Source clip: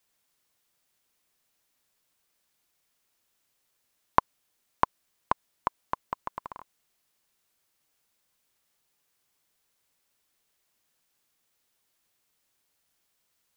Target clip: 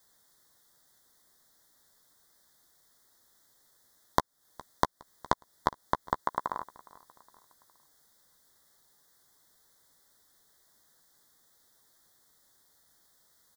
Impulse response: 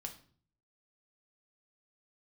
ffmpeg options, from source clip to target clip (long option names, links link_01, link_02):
-filter_complex "[0:a]asettb=1/sr,asplit=3[link_01][link_02][link_03];[link_01]atrim=end=6.204[link_04];[link_02]atrim=start=6.2:end=6.6,asetpts=PTS-STARTPTS,afade=type=in:duration=0.004:curve=qsin,afade=type=out:start_time=0.396:duration=0.004:curve=qsin,highpass=frequency=190:poles=1[link_05];[link_03]atrim=start=6.596[link_06];[link_04][link_05]acrossfade=duration=0.004:curve1=hsin:curve2=qsin[link_07];[link_07][link_06]acrossfade=duration=0.004:curve1=qsin:curve2=hsin,acompressor=threshold=-32dB:ratio=6,asuperstop=centerf=2600:order=8:qfactor=2,asplit=2[link_08][link_09];[link_09]adelay=14,volume=-12.5dB[link_10];[link_08][link_10]amix=inputs=2:normalize=0,aecho=1:1:413|826|1239:0.075|0.0345|0.0159,volume=9dB"